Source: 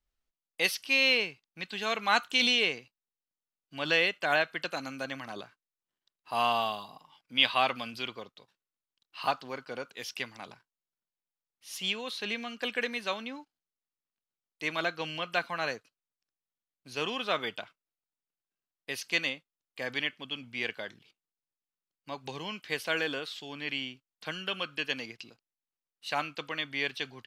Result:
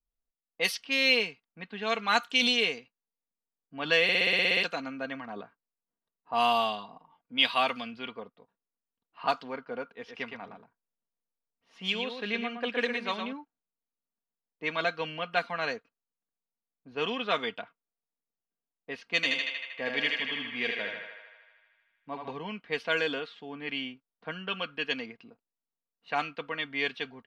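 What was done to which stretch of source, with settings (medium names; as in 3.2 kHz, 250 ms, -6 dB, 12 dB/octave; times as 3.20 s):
4.03 s: stutter in place 0.06 s, 10 plays
9.95–13.33 s: delay 116 ms -6 dB
19.15–22.33 s: thinning echo 78 ms, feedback 83%, high-pass 490 Hz, level -3 dB
whole clip: level-controlled noise filter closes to 890 Hz, open at -23 dBFS; comb 4.3 ms, depth 50%; level rider gain up to 8 dB; trim -7 dB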